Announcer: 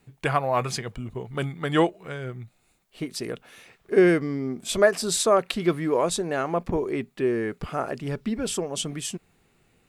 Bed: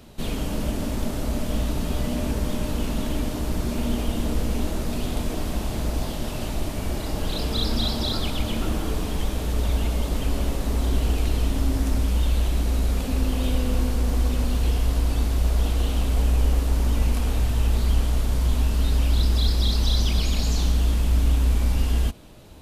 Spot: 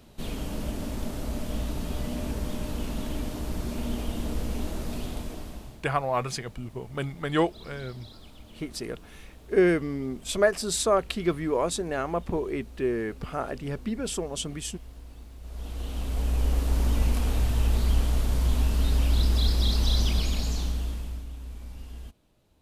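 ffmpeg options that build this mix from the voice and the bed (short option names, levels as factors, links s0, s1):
-filter_complex "[0:a]adelay=5600,volume=0.708[s0];[1:a]volume=5.31,afade=t=out:st=4.96:d=0.86:silence=0.141254,afade=t=in:st=15.41:d=1.39:silence=0.0944061,afade=t=out:st=20.05:d=1.21:silence=0.141254[s1];[s0][s1]amix=inputs=2:normalize=0"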